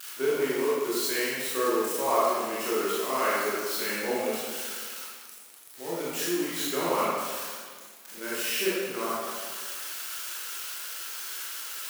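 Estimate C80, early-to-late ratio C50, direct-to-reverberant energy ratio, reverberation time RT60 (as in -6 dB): -1.0 dB, -3.5 dB, -9.0 dB, 1.7 s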